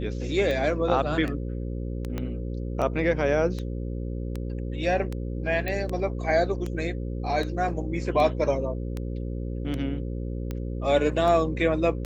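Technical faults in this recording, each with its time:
buzz 60 Hz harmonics 9 -31 dBFS
tick 78 rpm -19 dBFS
2.18 s: pop -18 dBFS
5.68 s: pop -16 dBFS

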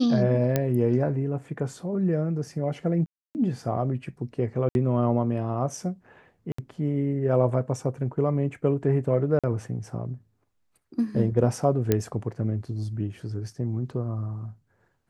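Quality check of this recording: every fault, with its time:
0.56 s: pop -9 dBFS
3.06–3.35 s: dropout 289 ms
4.69–4.75 s: dropout 61 ms
6.52–6.58 s: dropout 64 ms
9.39–9.44 s: dropout 46 ms
11.92 s: pop -8 dBFS

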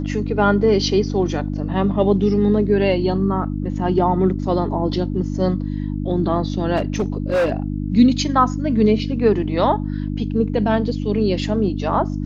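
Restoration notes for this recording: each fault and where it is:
hum 50 Hz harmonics 6 -24 dBFS
6.76–7.53 s: clipped -14.5 dBFS

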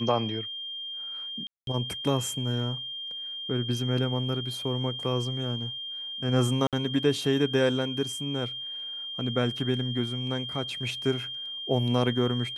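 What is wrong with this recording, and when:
whine 3.2 kHz -34 dBFS
1.47–1.67 s: dropout 202 ms
6.67–6.73 s: dropout 57 ms

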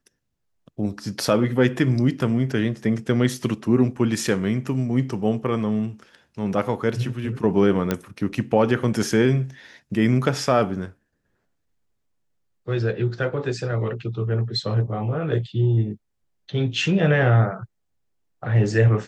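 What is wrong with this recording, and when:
7.91 s: pop -8 dBFS

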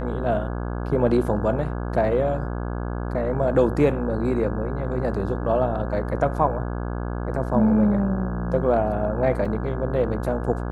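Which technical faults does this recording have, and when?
buzz 60 Hz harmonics 28 -28 dBFS
9.45 s: dropout 4.6 ms

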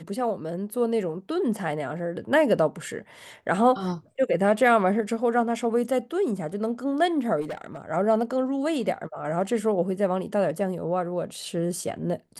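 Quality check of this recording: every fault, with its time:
7.41–7.82 s: clipped -29 dBFS

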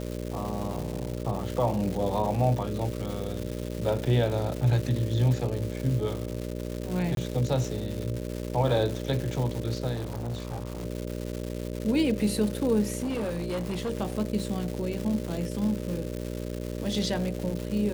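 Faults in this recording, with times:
buzz 60 Hz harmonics 10 -34 dBFS
crackle 380 per s -32 dBFS
7.15–7.17 s: dropout 22 ms
9.94–10.86 s: clipped -29 dBFS
13.03–13.91 s: clipped -26.5 dBFS

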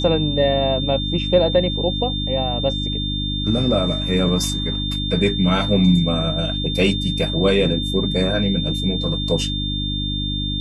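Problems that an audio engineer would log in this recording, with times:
hum 50 Hz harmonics 6 -25 dBFS
whine 3.6 kHz -25 dBFS

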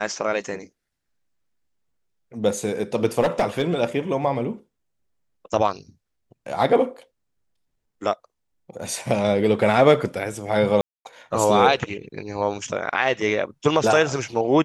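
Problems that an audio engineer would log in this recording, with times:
3.20–3.74 s: clipped -14.5 dBFS
10.81–11.05 s: dropout 241 ms

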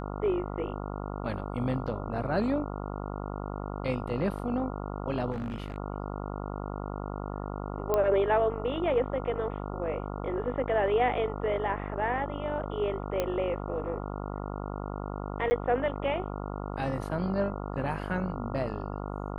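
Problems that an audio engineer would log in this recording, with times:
buzz 50 Hz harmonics 28 -36 dBFS
5.32–5.78 s: clipped -30 dBFS
7.94 s: pop -14 dBFS
13.20 s: pop -15 dBFS
15.50–15.51 s: dropout 10 ms

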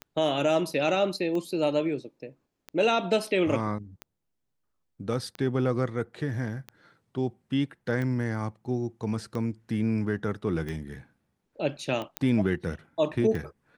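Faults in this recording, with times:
tick 45 rpm -22 dBFS
12.17 s: pop -12 dBFS

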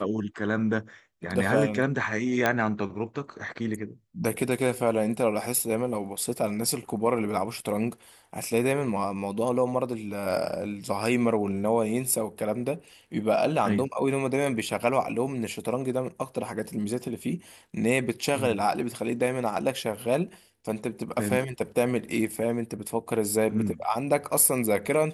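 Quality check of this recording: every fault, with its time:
2.46 s: pop -9 dBFS

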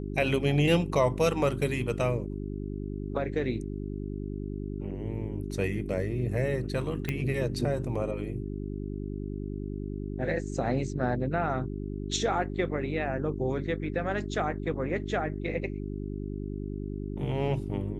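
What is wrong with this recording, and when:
hum 50 Hz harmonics 8 -35 dBFS
7.09 s: pop -16 dBFS

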